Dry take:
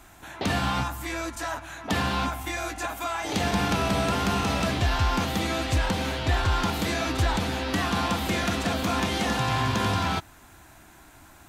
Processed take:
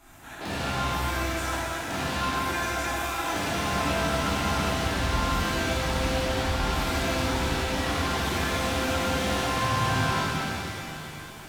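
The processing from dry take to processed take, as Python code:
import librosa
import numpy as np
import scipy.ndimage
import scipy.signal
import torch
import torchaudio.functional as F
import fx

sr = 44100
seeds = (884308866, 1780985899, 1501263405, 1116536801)

y = 10.0 ** (-28.0 / 20.0) * np.tanh(x / 10.0 ** (-28.0 / 20.0))
y = fx.rev_shimmer(y, sr, seeds[0], rt60_s=3.4, semitones=7, shimmer_db=-8, drr_db=-10.5)
y = y * librosa.db_to_amplitude(-7.0)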